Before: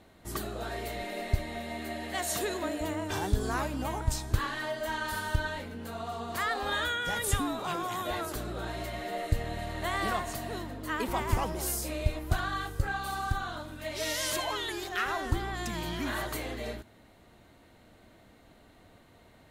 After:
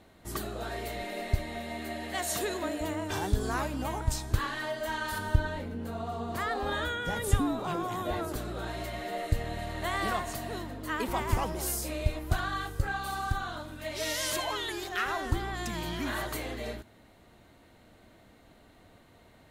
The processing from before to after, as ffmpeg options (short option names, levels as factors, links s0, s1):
-filter_complex "[0:a]asettb=1/sr,asplit=3[s0][s1][s2];[s0]atrim=end=5.184[s3];[s1]atrim=start=5.18:end=8.36,asetpts=PTS-STARTPTS,afade=t=in:d=0.004:c=qsin,afade=t=out:st=3.176:d=0.004:c=qsin,tiltshelf=f=840:g=5[s4];[s2]atrim=start=8.356[s5];[s3][s4]acrossfade=d=0.004:c1=hsin:c2=qsin[s6];[s6][s5]acrossfade=d=0.004:c1=qsin:c2=hsin"